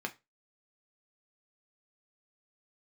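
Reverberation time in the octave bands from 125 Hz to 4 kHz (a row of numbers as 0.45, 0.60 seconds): 0.25, 0.25, 0.25, 0.25, 0.20, 0.20 seconds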